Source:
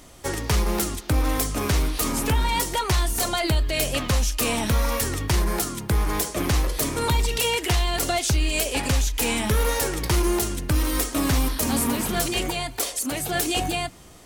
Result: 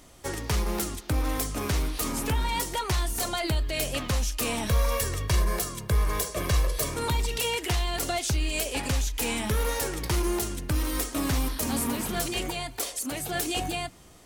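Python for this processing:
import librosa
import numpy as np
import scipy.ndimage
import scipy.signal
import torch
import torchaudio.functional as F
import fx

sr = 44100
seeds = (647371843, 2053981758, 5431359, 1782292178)

y = fx.comb(x, sr, ms=1.8, depth=0.6, at=(4.67, 6.94))
y = F.gain(torch.from_numpy(y), -5.0).numpy()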